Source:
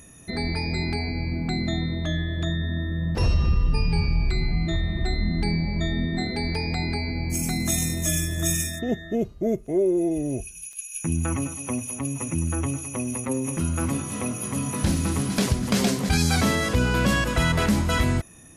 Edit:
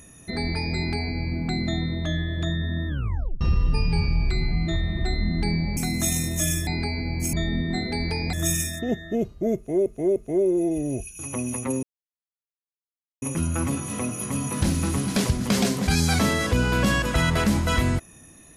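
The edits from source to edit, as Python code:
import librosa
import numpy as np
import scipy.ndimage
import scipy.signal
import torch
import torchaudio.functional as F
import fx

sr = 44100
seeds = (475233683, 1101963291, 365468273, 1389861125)

y = fx.edit(x, sr, fx.tape_stop(start_s=2.88, length_s=0.53),
    fx.swap(start_s=5.77, length_s=1.0, other_s=7.43, other_length_s=0.9),
    fx.repeat(start_s=9.56, length_s=0.3, count=3),
    fx.cut(start_s=10.59, length_s=2.21),
    fx.insert_silence(at_s=13.44, length_s=1.39), tone=tone)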